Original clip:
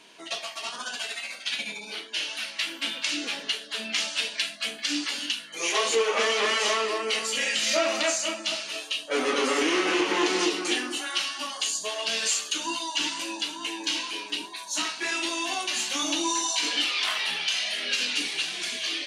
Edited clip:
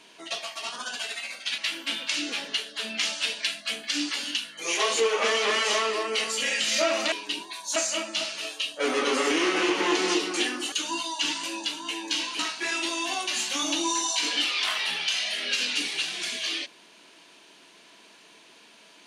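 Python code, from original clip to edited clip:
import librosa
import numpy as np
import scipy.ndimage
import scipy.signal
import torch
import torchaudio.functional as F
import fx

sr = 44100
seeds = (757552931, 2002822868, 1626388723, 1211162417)

y = fx.edit(x, sr, fx.cut(start_s=1.58, length_s=0.95),
    fx.cut(start_s=11.03, length_s=1.45),
    fx.move(start_s=14.15, length_s=0.64, to_s=8.07), tone=tone)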